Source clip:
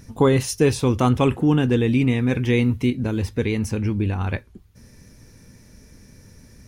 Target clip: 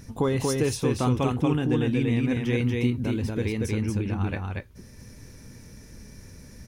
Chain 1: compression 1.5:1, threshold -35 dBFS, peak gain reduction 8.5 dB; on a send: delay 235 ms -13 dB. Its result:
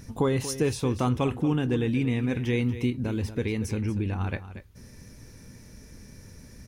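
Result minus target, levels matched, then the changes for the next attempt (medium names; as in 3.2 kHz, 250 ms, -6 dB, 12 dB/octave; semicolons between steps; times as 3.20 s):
echo-to-direct -10.5 dB
change: delay 235 ms -2.5 dB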